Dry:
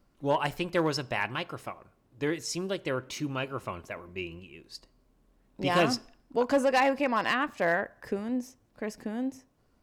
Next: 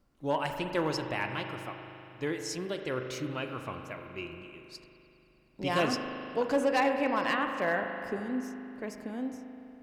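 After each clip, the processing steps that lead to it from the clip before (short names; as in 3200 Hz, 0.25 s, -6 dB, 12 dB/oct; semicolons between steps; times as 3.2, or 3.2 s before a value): spring tank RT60 3 s, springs 39 ms, chirp 65 ms, DRR 5 dB; gain -3.5 dB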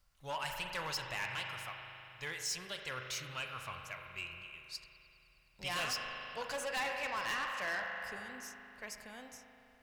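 passive tone stack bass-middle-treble 10-0-10; soft clip -37.5 dBFS, distortion -9 dB; gain +5.5 dB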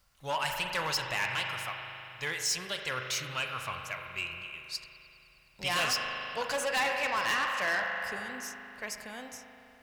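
low shelf 60 Hz -9 dB; gain +7.5 dB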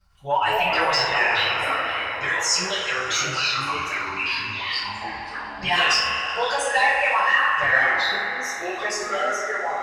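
formant sharpening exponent 2; two-slope reverb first 0.52 s, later 3.2 s, from -19 dB, DRR -10 dB; echoes that change speed 0.11 s, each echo -5 st, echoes 2, each echo -6 dB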